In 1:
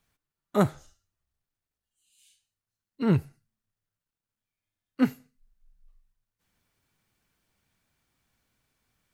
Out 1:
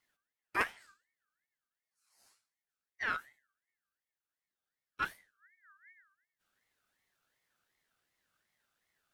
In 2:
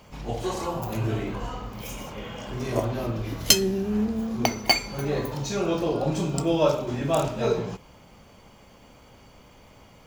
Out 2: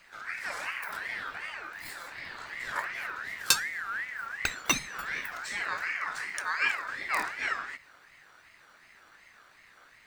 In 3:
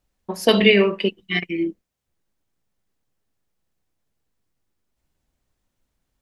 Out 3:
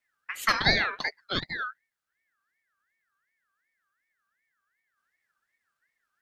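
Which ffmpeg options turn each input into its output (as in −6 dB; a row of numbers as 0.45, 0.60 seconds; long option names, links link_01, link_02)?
-filter_complex "[0:a]acrossover=split=420[link_01][link_02];[link_01]acompressor=threshold=-31dB:ratio=6[link_03];[link_03][link_02]amix=inputs=2:normalize=0,afreqshift=-210,aeval=exprs='val(0)*sin(2*PI*1700*n/s+1700*0.2/2.7*sin(2*PI*2.7*n/s))':channel_layout=same,volume=-3dB"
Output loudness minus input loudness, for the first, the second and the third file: −10.0, −6.0, −8.0 LU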